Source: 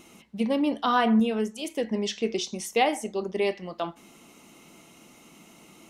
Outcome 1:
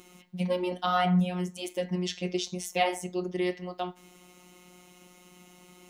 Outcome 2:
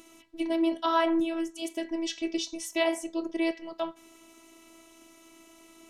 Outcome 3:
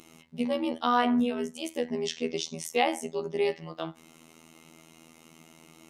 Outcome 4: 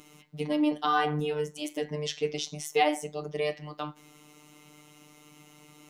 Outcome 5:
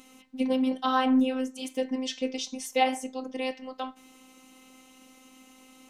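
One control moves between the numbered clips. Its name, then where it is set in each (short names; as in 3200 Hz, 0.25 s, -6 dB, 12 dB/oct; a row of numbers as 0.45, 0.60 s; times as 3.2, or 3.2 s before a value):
robotiser, frequency: 180, 330, 81, 150, 260 Hz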